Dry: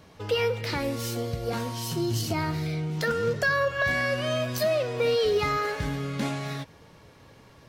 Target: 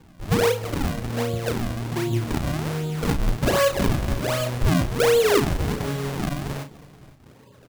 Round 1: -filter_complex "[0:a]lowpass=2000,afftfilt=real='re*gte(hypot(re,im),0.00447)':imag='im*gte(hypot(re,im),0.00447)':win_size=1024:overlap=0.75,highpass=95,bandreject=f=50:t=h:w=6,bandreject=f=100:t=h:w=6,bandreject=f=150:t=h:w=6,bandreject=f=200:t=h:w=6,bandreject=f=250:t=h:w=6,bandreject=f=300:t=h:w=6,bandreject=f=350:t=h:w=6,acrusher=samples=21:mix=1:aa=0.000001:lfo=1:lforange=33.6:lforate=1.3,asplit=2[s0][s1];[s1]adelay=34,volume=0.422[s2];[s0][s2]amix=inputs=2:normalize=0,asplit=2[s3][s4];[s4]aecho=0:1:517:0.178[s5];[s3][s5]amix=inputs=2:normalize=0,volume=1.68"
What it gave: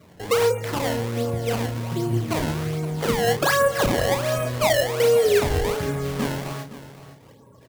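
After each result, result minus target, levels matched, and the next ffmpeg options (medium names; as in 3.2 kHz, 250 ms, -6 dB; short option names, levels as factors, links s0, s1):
echo-to-direct +7.5 dB; decimation with a swept rate: distortion -7 dB
-filter_complex "[0:a]lowpass=2000,afftfilt=real='re*gte(hypot(re,im),0.00447)':imag='im*gte(hypot(re,im),0.00447)':win_size=1024:overlap=0.75,highpass=95,bandreject=f=50:t=h:w=6,bandreject=f=100:t=h:w=6,bandreject=f=150:t=h:w=6,bandreject=f=200:t=h:w=6,bandreject=f=250:t=h:w=6,bandreject=f=300:t=h:w=6,bandreject=f=350:t=h:w=6,acrusher=samples=21:mix=1:aa=0.000001:lfo=1:lforange=33.6:lforate=1.3,asplit=2[s0][s1];[s1]adelay=34,volume=0.422[s2];[s0][s2]amix=inputs=2:normalize=0,asplit=2[s3][s4];[s4]aecho=0:1:517:0.075[s5];[s3][s5]amix=inputs=2:normalize=0,volume=1.68"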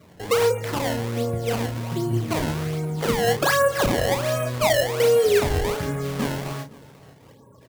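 decimation with a swept rate: distortion -7 dB
-filter_complex "[0:a]lowpass=2000,afftfilt=real='re*gte(hypot(re,im),0.00447)':imag='im*gte(hypot(re,im),0.00447)':win_size=1024:overlap=0.75,highpass=95,bandreject=f=50:t=h:w=6,bandreject=f=100:t=h:w=6,bandreject=f=150:t=h:w=6,bandreject=f=200:t=h:w=6,bandreject=f=250:t=h:w=6,bandreject=f=300:t=h:w=6,bandreject=f=350:t=h:w=6,acrusher=samples=57:mix=1:aa=0.000001:lfo=1:lforange=91.2:lforate=1.3,asplit=2[s0][s1];[s1]adelay=34,volume=0.422[s2];[s0][s2]amix=inputs=2:normalize=0,asplit=2[s3][s4];[s4]aecho=0:1:517:0.075[s5];[s3][s5]amix=inputs=2:normalize=0,volume=1.68"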